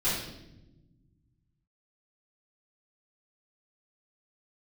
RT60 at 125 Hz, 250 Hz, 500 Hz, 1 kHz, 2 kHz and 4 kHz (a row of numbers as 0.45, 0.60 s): 2.6, 2.1, 1.3, 0.70, 0.75, 0.75 s